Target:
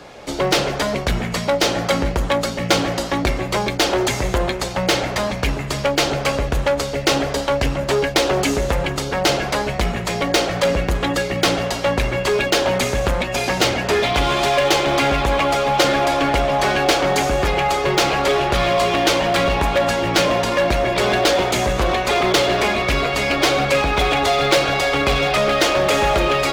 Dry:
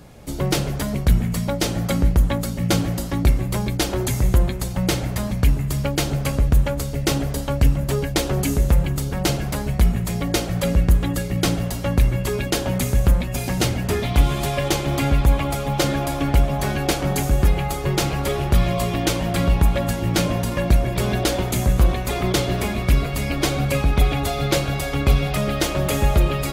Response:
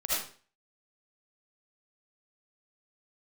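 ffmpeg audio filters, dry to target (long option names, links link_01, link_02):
-filter_complex "[0:a]acrossover=split=350 6400:gain=0.141 1 0.112[link_01][link_02][link_03];[link_01][link_02][link_03]amix=inputs=3:normalize=0,asplit=2[link_04][link_05];[link_05]aeval=exprs='0.0531*(abs(mod(val(0)/0.0531+3,4)-2)-1)':channel_layout=same,volume=-4dB[link_06];[link_04][link_06]amix=inputs=2:normalize=0,volume=7dB"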